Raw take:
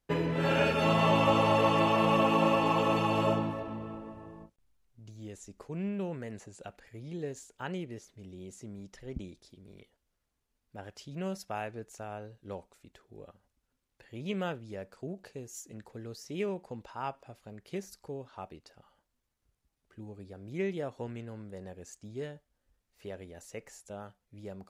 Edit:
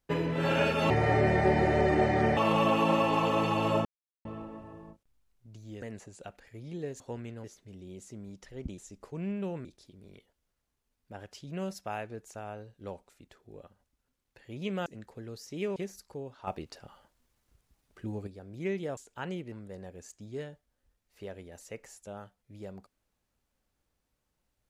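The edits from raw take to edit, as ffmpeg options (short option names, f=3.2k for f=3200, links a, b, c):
-filter_complex "[0:a]asplit=16[a][b][c][d][e][f][g][h][i][j][k][l][m][n][o][p];[a]atrim=end=0.904[q];[b]atrim=start=0.9:end=1.9,asetpts=PTS-STARTPTS,asetrate=29988,aresample=44100[r];[c]atrim=start=1.896:end=3.38,asetpts=PTS-STARTPTS,afade=t=out:st=1.48:d=0.004:c=hsin[s];[d]atrim=start=3.38:end=3.78,asetpts=PTS-STARTPTS,volume=0[t];[e]atrim=start=3.78:end=5.352,asetpts=PTS-STARTPTS,afade=t=in:d=0.004:c=hsin[u];[f]atrim=start=6.218:end=7.402[v];[g]atrim=start=20.908:end=21.352[w];[h]atrim=start=7.948:end=9.292[x];[i]atrim=start=5.348:end=6.222[y];[j]atrim=start=9.288:end=14.502[z];[k]atrim=start=15.638:end=16.542[aa];[l]atrim=start=17.698:end=18.412[ab];[m]atrim=start=18.408:end=20.212,asetpts=PTS-STARTPTS,volume=8.5dB[ac];[n]atrim=start=20.208:end=20.912[ad];[o]atrim=start=7.398:end=7.952[ae];[p]atrim=start=21.348[af];[q][r]acrossfade=d=0.004:c1=hsin:c2=hsin[ag];[s][t][u]concat=n=3:v=0:a=1[ah];[ag][ah]acrossfade=d=0.004:c1=hsin:c2=hsin[ai];[ai][v]acrossfade=d=0.004:c1=hsin:c2=hsin[aj];[aj][w]acrossfade=d=0.004:c1=hsin:c2=hsin[ak];[ak][x]acrossfade=d=0.004:c1=hsin:c2=hsin[al];[al][y]acrossfade=d=0.004:c1=hsin:c2=hsin[am];[am][z]acrossfade=d=0.004:c1=hsin:c2=hsin[an];[an][aa]acrossfade=d=0.004:c1=hsin:c2=hsin[ao];[ao][ab]acrossfade=d=0.004:c1=hsin:c2=hsin[ap];[ap][ac]acrossfade=d=0.004:c1=hsin:c2=hsin[aq];[aq][ad]acrossfade=d=0.004:c1=hsin:c2=hsin[ar];[ar][ae]acrossfade=d=0.004:c1=hsin:c2=hsin[as];[as][af]acrossfade=d=0.004:c1=hsin:c2=hsin"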